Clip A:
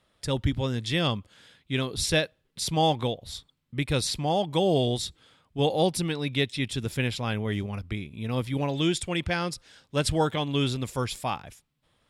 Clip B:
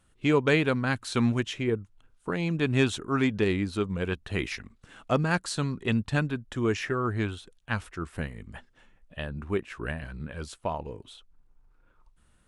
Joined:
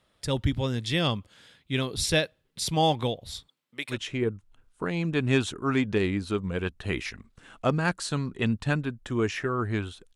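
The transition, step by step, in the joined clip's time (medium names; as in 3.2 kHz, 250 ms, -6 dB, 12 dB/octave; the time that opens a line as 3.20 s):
clip A
3.48–3.98 s: high-pass 270 Hz -> 800 Hz
3.93 s: go over to clip B from 1.39 s, crossfade 0.10 s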